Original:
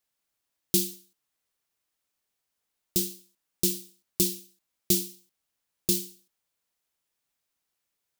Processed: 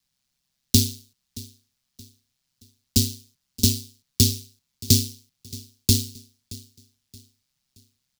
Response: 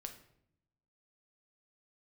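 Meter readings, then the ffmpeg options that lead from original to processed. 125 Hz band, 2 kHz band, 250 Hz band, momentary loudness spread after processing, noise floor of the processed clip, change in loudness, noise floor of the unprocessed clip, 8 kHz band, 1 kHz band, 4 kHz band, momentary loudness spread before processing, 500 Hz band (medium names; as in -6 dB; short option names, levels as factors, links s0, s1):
+16.0 dB, +5.0 dB, +7.0 dB, 21 LU, -78 dBFS, +5.5 dB, -83 dBFS, +5.5 dB, no reading, +9.5 dB, 12 LU, -1.0 dB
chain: -af "equalizer=f=4700:t=o:w=1.4:g=10,aeval=exprs='val(0)*sin(2*PI*66*n/s)':c=same,lowshelf=f=280:t=q:w=1.5:g=12,afreqshift=-24,aecho=1:1:624|1248|1872:0.1|0.037|0.0137,volume=1.5"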